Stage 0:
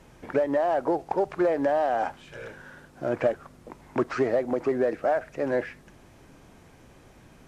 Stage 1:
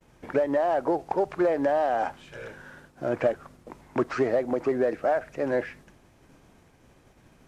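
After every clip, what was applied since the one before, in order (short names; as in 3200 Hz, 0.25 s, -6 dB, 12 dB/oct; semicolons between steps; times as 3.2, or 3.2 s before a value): expander -47 dBFS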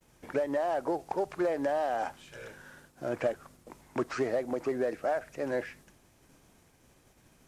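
high shelf 4700 Hz +12 dB; gain -6 dB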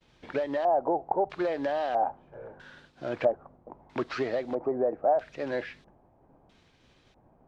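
LFO low-pass square 0.77 Hz 790–3800 Hz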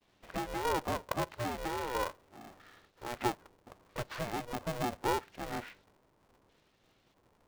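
polarity switched at an audio rate 240 Hz; gain -7.5 dB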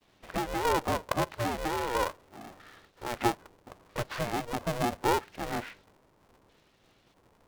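vibrato 8.2 Hz 55 cents; gain +5 dB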